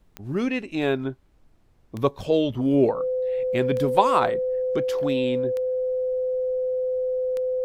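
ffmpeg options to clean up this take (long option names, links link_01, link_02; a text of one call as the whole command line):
ffmpeg -i in.wav -af "adeclick=threshold=4,bandreject=frequency=510:width=30,agate=range=-21dB:threshold=-48dB" out.wav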